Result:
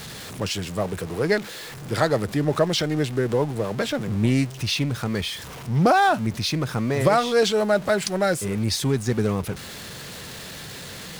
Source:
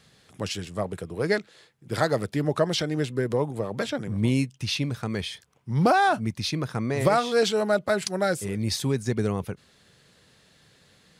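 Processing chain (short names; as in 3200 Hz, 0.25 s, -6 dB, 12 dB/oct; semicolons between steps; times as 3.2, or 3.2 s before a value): zero-crossing step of -34 dBFS; Doppler distortion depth 0.14 ms; gain +2 dB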